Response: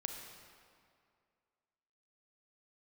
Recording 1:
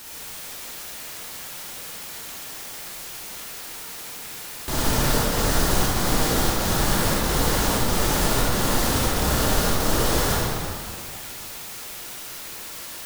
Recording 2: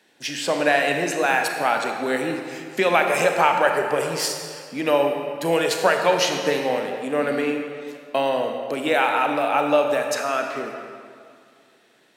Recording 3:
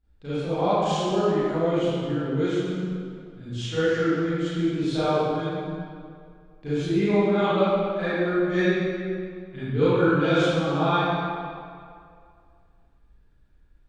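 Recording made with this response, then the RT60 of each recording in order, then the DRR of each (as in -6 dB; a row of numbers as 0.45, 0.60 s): 2; 2.3, 2.3, 2.3 s; -6.0, 3.0, -15.0 dB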